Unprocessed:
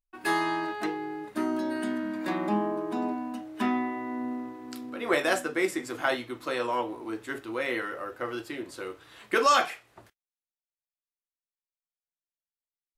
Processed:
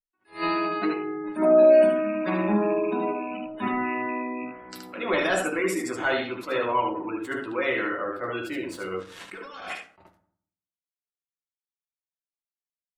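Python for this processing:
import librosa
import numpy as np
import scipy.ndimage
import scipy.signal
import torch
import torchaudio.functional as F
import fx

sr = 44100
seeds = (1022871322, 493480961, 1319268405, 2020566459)

y = fx.rattle_buzz(x, sr, strikes_db=-39.0, level_db=-30.0)
y = fx.low_shelf(y, sr, hz=400.0, db=-8.5, at=(4.44, 4.98))
y = fx.leveller(y, sr, passes=3)
y = fx.spec_gate(y, sr, threshold_db=-25, keep='strong')
y = fx.peak_eq(y, sr, hz=630.0, db=12.5, octaves=0.77, at=(1.42, 1.82))
y = fx.room_early_taps(y, sr, ms=(10, 75), db=(-8.0, -5.0))
y = fx.over_compress(y, sr, threshold_db=-28.0, ratio=-1.0, at=(8.82, 9.7), fade=0.02)
y = fx.rev_fdn(y, sr, rt60_s=0.6, lf_ratio=1.35, hf_ratio=0.6, size_ms=32.0, drr_db=7.0)
y = fx.attack_slew(y, sr, db_per_s=220.0)
y = y * 10.0 ** (-7.5 / 20.0)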